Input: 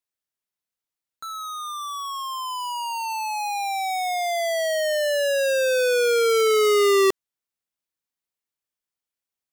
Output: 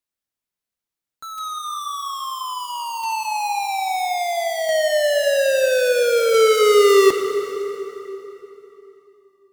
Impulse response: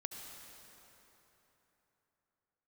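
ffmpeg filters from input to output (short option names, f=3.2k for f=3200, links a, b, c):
-filter_complex "[0:a]acrusher=bits=3:mode=log:mix=0:aa=0.000001,flanger=delay=3.4:depth=3.7:regen=-74:speed=0.35:shape=sinusoidal,asplit=2[a][b];[1:a]atrim=start_sample=2205,lowshelf=f=400:g=7.5[c];[b][c]afir=irnorm=-1:irlink=0,volume=3.5dB[d];[a][d]amix=inputs=2:normalize=0"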